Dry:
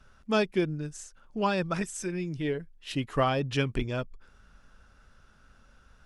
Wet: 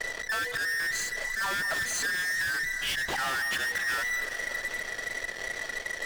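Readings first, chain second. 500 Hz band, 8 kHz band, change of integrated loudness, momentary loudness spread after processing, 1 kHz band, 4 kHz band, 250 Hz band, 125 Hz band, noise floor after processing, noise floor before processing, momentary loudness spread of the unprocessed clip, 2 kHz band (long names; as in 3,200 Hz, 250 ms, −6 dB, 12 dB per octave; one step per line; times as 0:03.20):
−11.0 dB, +10.0 dB, +1.5 dB, 6 LU, −2.0 dB, +6.0 dB, −17.5 dB, −17.5 dB, −39 dBFS, −59 dBFS, 10 LU, +12.5 dB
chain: frequency inversion band by band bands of 2,000 Hz
hum removal 242.9 Hz, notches 4
volume swells 151 ms
Bessel low-pass filter 3,700 Hz
high-shelf EQ 2,000 Hz +6 dB
in parallel at −6 dB: fuzz pedal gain 49 dB, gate −57 dBFS
on the sum: downward compressor, threshold −26 dBFS, peak gain reduction 10.5 dB
on a send: delay that swaps between a low-pass and a high-pass 193 ms, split 1,500 Hz, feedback 69%, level −12 dB
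on the sum: feedback echo with a swinging delay time 265 ms, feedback 72%, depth 143 cents, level −16.5 dB
level −4 dB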